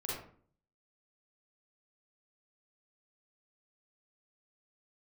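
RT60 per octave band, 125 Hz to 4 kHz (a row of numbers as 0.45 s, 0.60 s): 0.75 s, 0.65 s, 0.55 s, 0.45 s, 0.40 s, 0.30 s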